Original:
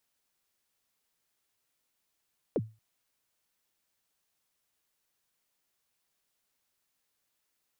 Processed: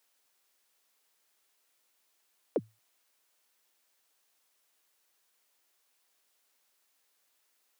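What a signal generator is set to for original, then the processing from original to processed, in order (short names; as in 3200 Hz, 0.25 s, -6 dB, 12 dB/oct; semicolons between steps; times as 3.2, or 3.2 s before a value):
kick drum length 0.23 s, from 570 Hz, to 110 Hz, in 43 ms, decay 0.29 s, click off, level -22 dB
HPF 340 Hz 12 dB/oct; in parallel at 0 dB: limiter -31 dBFS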